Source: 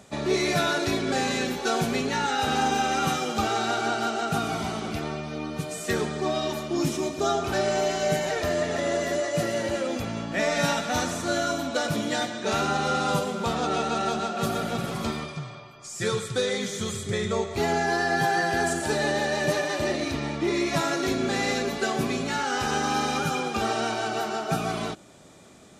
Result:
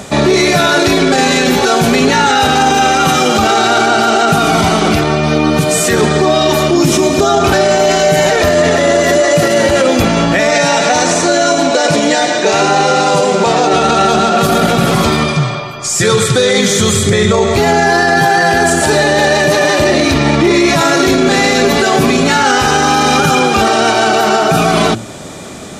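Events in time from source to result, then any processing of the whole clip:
10.51–13.74 s: cabinet simulation 190–8600 Hz, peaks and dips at 230 Hz -9 dB, 1.3 kHz -8 dB, 3.4 kHz -6 dB
whole clip: de-hum 112.5 Hz, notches 3; loudness maximiser +24 dB; trim -1 dB

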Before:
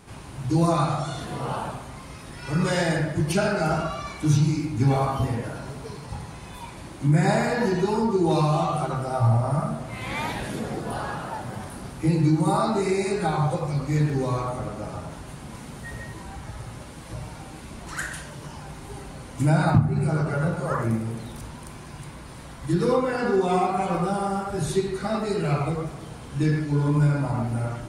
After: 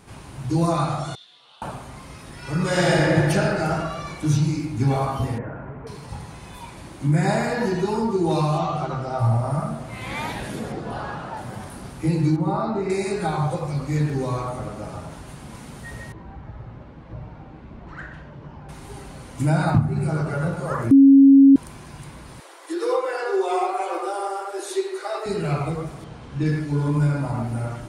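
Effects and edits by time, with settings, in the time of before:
1.15–1.62 s: band-pass filter 3.6 kHz, Q 5.6
2.67–3.17 s: reverb throw, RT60 2.6 s, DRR -5.5 dB
5.38–5.87 s: inverse Chebyshev low-pass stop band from 5 kHz, stop band 50 dB
8.58–9.19 s: low-pass 6.6 kHz 24 dB/octave
10.72–11.37 s: distance through air 75 m
12.36–12.90 s: tape spacing loss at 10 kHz 26 dB
16.12–18.69 s: tape spacing loss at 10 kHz 40 dB
20.91–21.56 s: bleep 274 Hz -7 dBFS
22.40–25.26 s: steep high-pass 320 Hz 96 dB/octave
26.04–26.46 s: distance through air 94 m

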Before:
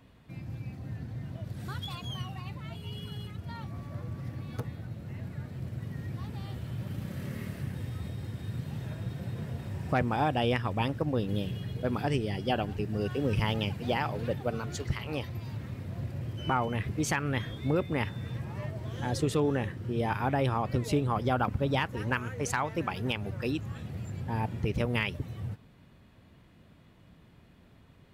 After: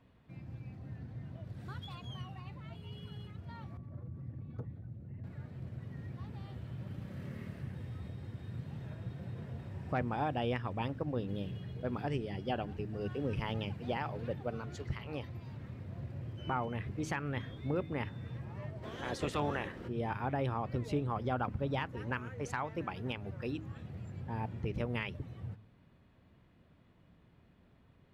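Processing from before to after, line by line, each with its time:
3.77–5.24 s: resonances exaggerated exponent 1.5
18.82–19.87 s: spectral peaks clipped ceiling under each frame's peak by 19 dB
whole clip: low-pass 2.7 kHz 6 dB/octave; de-hum 52.98 Hz, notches 6; trim -6 dB

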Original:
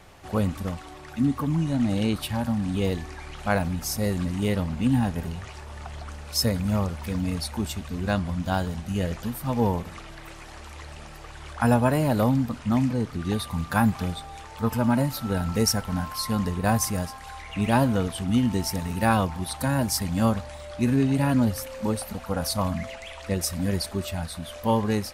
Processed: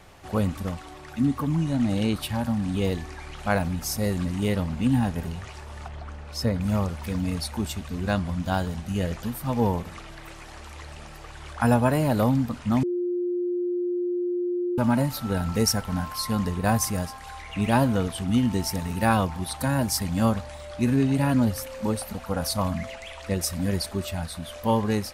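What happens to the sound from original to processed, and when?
5.88–6.61 s: low-pass 2.2 kHz 6 dB/octave
12.83–14.78 s: bleep 354 Hz -23.5 dBFS

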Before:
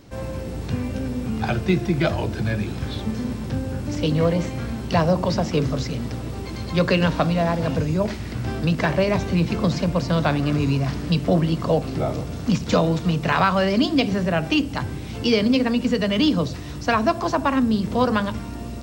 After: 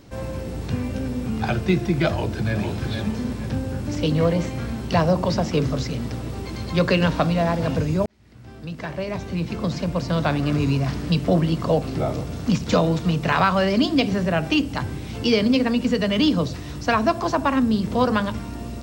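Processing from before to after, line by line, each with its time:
2.09–2.62 s: echo throw 460 ms, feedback 35%, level -5.5 dB
8.06–10.59 s: fade in

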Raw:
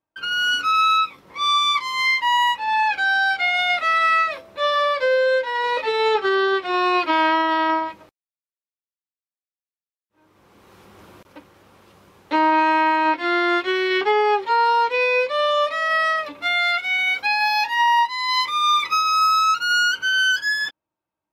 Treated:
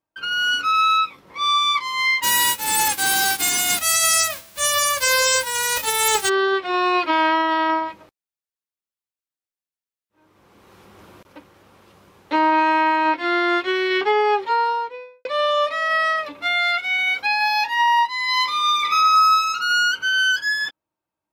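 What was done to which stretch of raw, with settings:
2.22–6.28 s: formants flattened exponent 0.1
14.40–15.25 s: studio fade out
18.10–19.49 s: reverb throw, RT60 1.1 s, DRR 4.5 dB

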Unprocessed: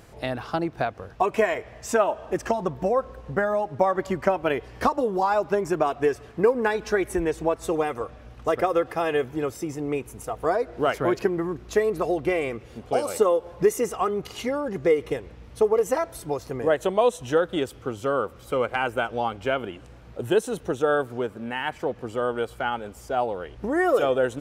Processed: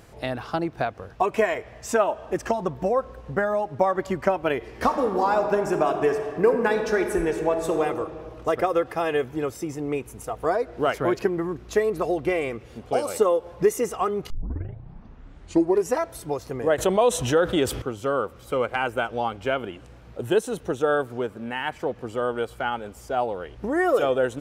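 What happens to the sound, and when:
4.56–7.82 s: reverb throw, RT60 2.2 s, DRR 5.5 dB
14.30 s: tape start 1.68 s
16.78–17.82 s: level flattener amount 50%

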